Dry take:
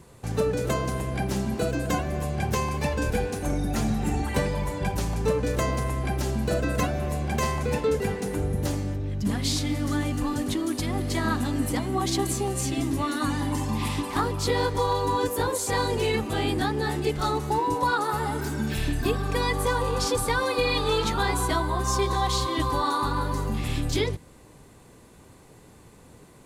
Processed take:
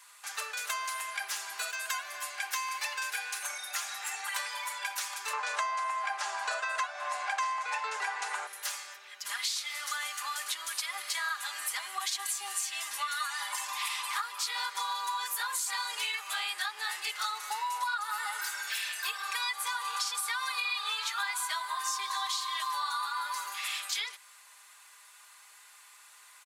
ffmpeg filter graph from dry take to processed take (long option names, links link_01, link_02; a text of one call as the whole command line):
ffmpeg -i in.wav -filter_complex "[0:a]asettb=1/sr,asplit=3[link_01][link_02][link_03];[link_01]atrim=end=5.334[link_04];[link_02]atrim=start=5.33:end=8.47,asetpts=PTS-STARTPTS,afade=type=in:duration=0.004:curve=qsin,afade=type=out:start_time=3.136:duration=0.004:curve=qsin,lowpass=frequency=8700:width=0.5412,lowpass=frequency=8700:width=1.3066,equalizer=frequency=790:width_type=o:width=1.9:gain=15[link_05];[link_03]atrim=start=8.466[link_06];[link_04][link_05]acrossfade=duration=0.004:curve1=hsin:curve2=qsin[link_07];[link_07][link_06]acrossfade=duration=0.004:curve1=qsin:curve2=hsin,highpass=frequency=1200:width=0.5412,highpass=frequency=1200:width=1.3066,aecho=1:1:4.9:0.55,acompressor=threshold=-34dB:ratio=6,volume=3.5dB" out.wav